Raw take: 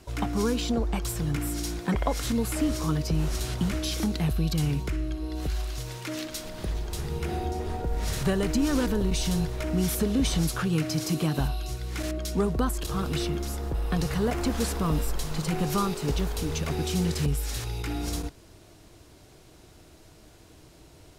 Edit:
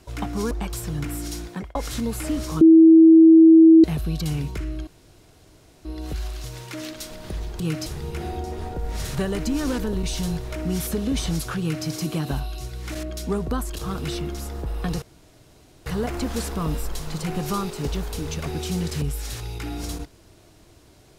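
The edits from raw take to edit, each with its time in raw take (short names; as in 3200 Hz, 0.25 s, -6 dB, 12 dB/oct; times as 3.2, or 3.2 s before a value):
0.51–0.83 cut
1.6–2.07 fade out equal-power
2.93–4.16 bleep 324 Hz -7 dBFS
5.19 insert room tone 0.98 s
10.68–10.94 copy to 6.94
14.1 insert room tone 0.84 s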